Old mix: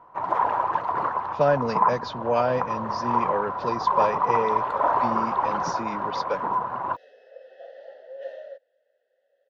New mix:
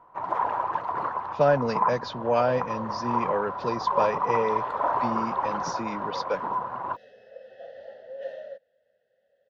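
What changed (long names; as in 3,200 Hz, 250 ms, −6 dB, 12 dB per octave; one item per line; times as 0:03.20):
first sound −3.5 dB
second sound: remove Chebyshev high-pass filter 300 Hz, order 4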